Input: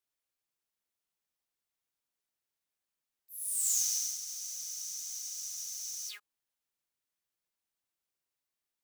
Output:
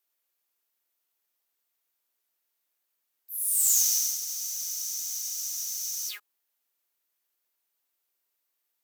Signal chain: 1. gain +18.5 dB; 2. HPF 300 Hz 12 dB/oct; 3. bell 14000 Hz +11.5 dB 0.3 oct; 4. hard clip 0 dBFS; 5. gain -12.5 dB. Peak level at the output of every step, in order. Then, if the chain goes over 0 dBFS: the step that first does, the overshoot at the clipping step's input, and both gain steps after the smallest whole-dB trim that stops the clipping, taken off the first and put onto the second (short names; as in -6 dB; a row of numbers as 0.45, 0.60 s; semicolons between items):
+2.0, +2.0, +4.0, 0.0, -12.5 dBFS; step 1, 4.0 dB; step 1 +14.5 dB, step 5 -8.5 dB